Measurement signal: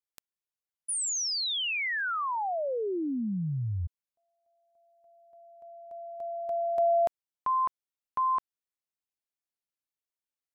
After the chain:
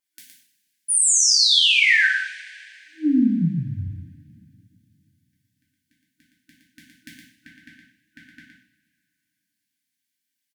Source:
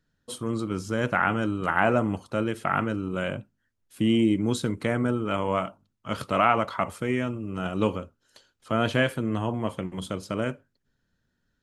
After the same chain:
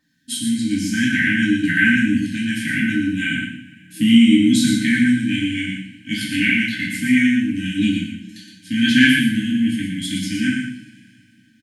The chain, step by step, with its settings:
high-pass filter 170 Hz 12 dB per octave
brick-wall band-stop 320–1,500 Hz
pitch vibrato 5.1 Hz 17 cents
single-tap delay 116 ms −6 dB
coupled-rooms reverb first 0.54 s, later 2.8 s, from −22 dB, DRR −5 dB
level +7 dB

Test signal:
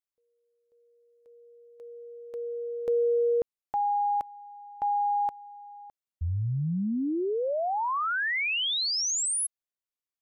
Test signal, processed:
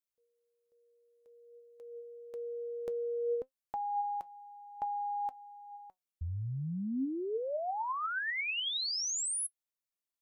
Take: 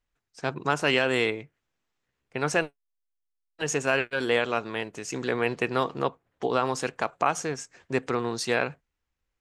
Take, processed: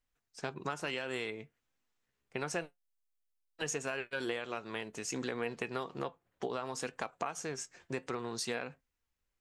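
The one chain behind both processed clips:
high-shelf EQ 5,400 Hz +5 dB
downward compressor, threshold −29 dBFS
flanger 0.57 Hz, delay 3.7 ms, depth 2.2 ms, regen +78%

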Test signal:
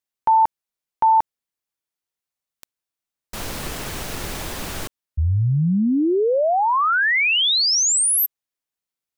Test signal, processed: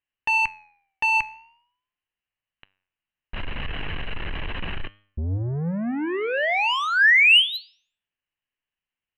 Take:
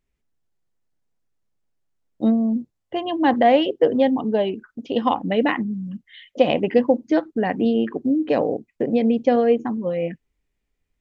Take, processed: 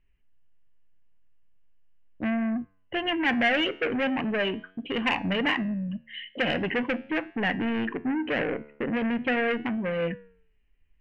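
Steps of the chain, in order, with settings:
spectral tilt −3.5 dB per octave
in parallel at −0.5 dB: brickwall limiter −11.5 dBFS
on the sum: Chebyshev low-pass with heavy ripple 4,100 Hz, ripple 9 dB
soft clipping −20 dBFS
flat-topped bell 2,200 Hz +15.5 dB 1.1 octaves
flanger 0.4 Hz, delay 9.7 ms, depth 4.1 ms, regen +88%

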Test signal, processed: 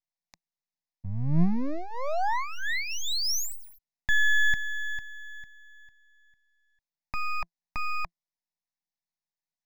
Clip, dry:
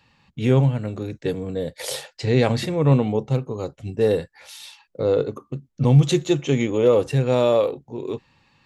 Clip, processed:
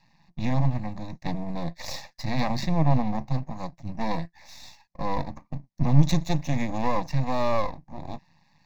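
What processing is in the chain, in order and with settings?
in parallel at −2.5 dB: brickwall limiter −12 dBFS
on the sum: loudspeaker in its box 150–6,600 Hz, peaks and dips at 170 Hz +9 dB, 410 Hz −10 dB, 1,200 Hz −9 dB, 2,400 Hz −10 dB, 4,600 Hz −4 dB
half-wave rectification
phaser with its sweep stopped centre 2,100 Hz, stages 8

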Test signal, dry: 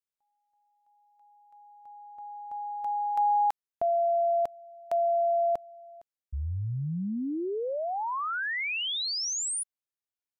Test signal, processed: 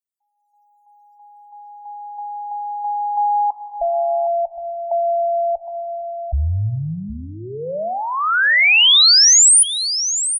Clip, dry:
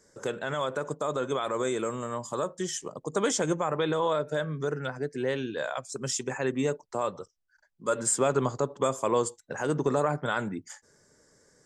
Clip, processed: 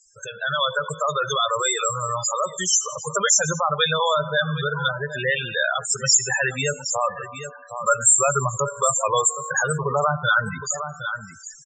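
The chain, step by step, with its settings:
tuned comb filter 52 Hz, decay 1.7 s, harmonics all, mix 60%
single-tap delay 764 ms −14 dB
in parallel at 0 dB: downward compressor 6 to 1, threshold −45 dBFS
on the sum: guitar amp tone stack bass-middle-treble 10-0-10
soft clipping −19 dBFS
spectral peaks only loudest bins 16
automatic gain control gain up to 11.5 dB
dynamic equaliser 960 Hz, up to −5 dB, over −45 dBFS, Q 2.2
boost into a limiter +20.5 dB
level −5 dB

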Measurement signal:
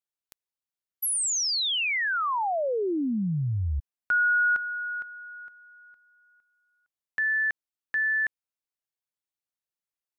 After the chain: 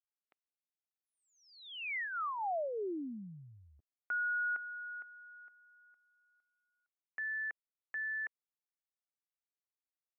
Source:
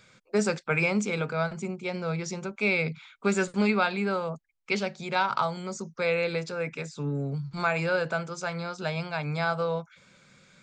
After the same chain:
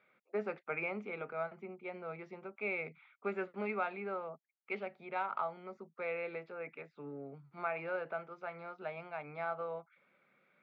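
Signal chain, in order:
loudspeaker in its box 420–2,100 Hz, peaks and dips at 510 Hz −5 dB, 990 Hz −7 dB, 1,600 Hz −9 dB
level −5.5 dB

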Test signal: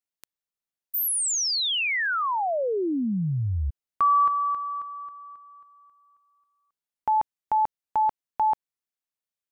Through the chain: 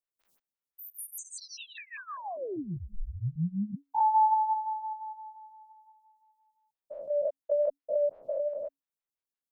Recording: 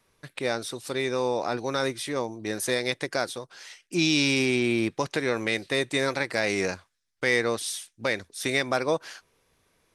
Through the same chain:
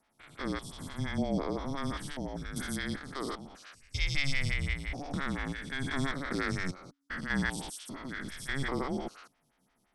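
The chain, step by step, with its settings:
spectrum averaged block by block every 200 ms
frequency shifter −280 Hz
phaser with staggered stages 5.8 Hz

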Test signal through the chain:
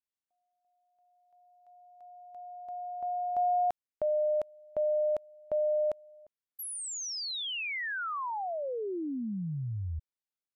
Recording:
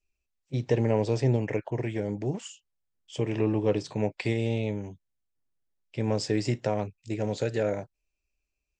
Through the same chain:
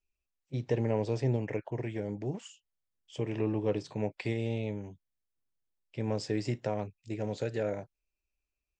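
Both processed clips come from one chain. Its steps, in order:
high-shelf EQ 6,000 Hz −5.5 dB
level −5 dB

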